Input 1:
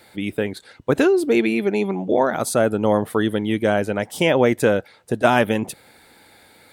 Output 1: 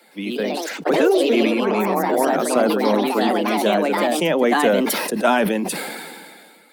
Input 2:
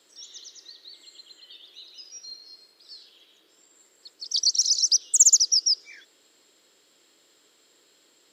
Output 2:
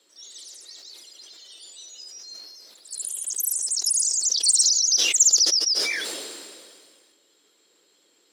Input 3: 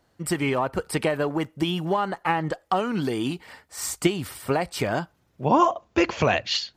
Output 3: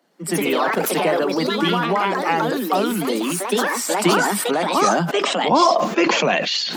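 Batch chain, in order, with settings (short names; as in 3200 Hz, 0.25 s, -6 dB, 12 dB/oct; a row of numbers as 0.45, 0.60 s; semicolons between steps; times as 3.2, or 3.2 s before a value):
bin magnitudes rounded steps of 15 dB; steep high-pass 160 Hz 96 dB/oct; echoes that change speed 0.114 s, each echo +3 st, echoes 3; sustainer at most 29 dB/s; match loudness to -19 LUFS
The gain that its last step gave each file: -2.0, -1.5, +3.0 dB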